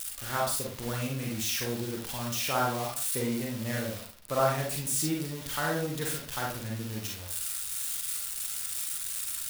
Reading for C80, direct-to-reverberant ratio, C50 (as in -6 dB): 8.5 dB, -2.5 dB, 2.0 dB